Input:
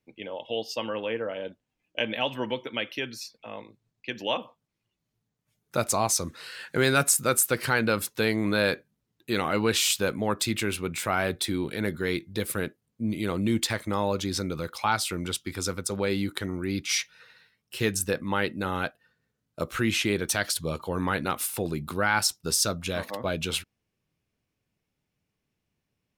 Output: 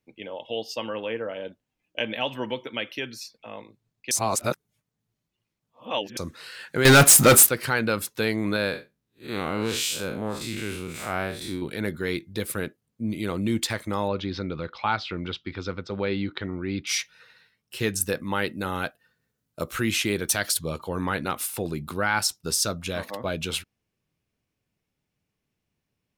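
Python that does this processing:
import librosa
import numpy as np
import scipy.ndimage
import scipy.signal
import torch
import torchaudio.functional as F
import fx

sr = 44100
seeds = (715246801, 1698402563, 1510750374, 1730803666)

y = fx.leveller(x, sr, passes=5, at=(6.85, 7.49))
y = fx.spec_blur(y, sr, span_ms=130.0, at=(8.56, 11.62))
y = fx.cheby2_lowpass(y, sr, hz=9300.0, order=4, stop_db=50, at=(14.08, 16.87))
y = fx.high_shelf(y, sr, hz=7800.0, db=8.0, at=(18.01, 20.59))
y = fx.edit(y, sr, fx.reverse_span(start_s=4.11, length_s=2.06), tone=tone)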